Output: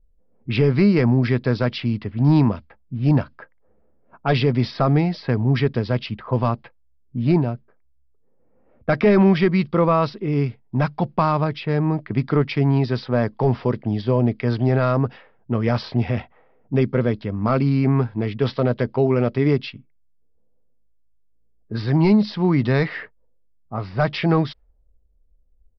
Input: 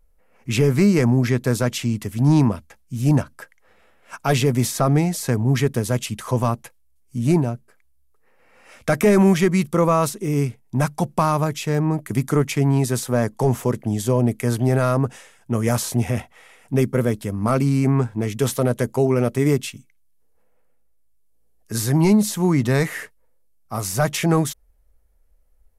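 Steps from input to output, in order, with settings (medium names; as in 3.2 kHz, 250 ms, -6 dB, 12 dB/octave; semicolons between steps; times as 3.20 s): level-controlled noise filter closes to 350 Hz, open at -16.5 dBFS; resampled via 11.025 kHz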